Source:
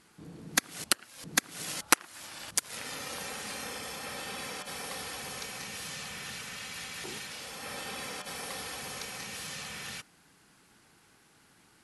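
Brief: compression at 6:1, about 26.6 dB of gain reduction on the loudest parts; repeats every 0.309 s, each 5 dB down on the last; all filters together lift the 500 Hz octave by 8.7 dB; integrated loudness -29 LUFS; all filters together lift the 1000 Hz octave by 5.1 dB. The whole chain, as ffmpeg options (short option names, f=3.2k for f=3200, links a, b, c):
-af "equalizer=f=500:t=o:g=9,equalizer=f=1k:t=o:g=4,acompressor=threshold=-44dB:ratio=6,aecho=1:1:309|618|927|1236|1545|1854|2163:0.562|0.315|0.176|0.0988|0.0553|0.031|0.0173,volume=15.5dB"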